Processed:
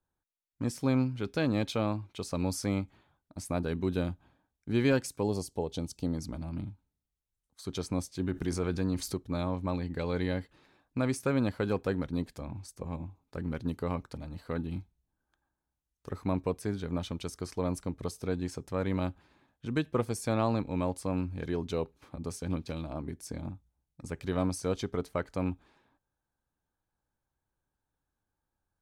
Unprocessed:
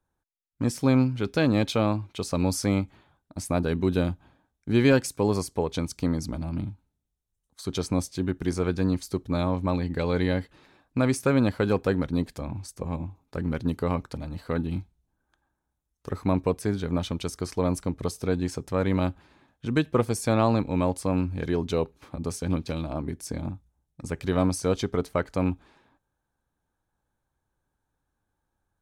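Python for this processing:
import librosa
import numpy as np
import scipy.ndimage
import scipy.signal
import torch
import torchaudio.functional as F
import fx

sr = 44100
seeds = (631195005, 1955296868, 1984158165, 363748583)

y = fx.spec_box(x, sr, start_s=5.23, length_s=0.92, low_hz=910.0, high_hz=2600.0, gain_db=-9)
y = fx.env_flatten(y, sr, amount_pct=50, at=(8.19, 9.14))
y = y * librosa.db_to_amplitude(-6.5)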